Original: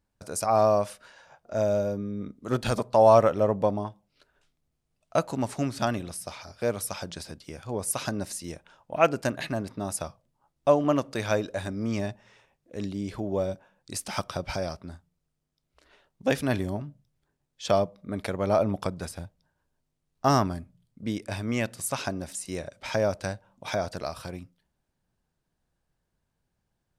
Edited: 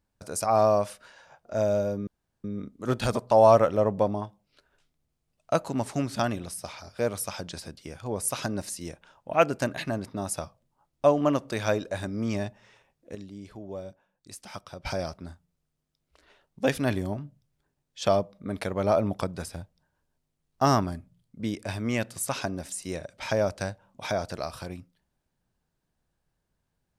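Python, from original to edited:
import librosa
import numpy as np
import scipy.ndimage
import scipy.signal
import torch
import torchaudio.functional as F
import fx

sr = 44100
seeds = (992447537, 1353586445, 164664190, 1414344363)

y = fx.edit(x, sr, fx.insert_room_tone(at_s=2.07, length_s=0.37),
    fx.clip_gain(start_s=12.78, length_s=1.7, db=-10.0), tone=tone)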